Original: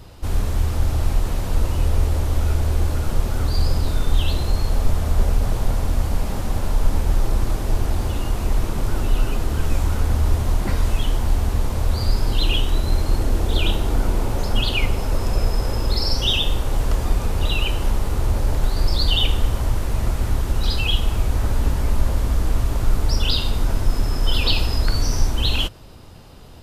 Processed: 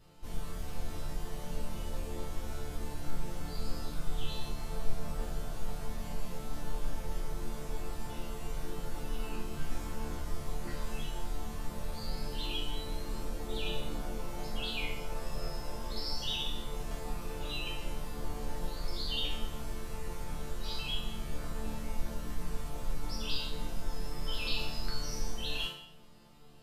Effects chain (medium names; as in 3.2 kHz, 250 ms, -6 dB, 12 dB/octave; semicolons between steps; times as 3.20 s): chord resonator D3 minor, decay 0.65 s; trim +5.5 dB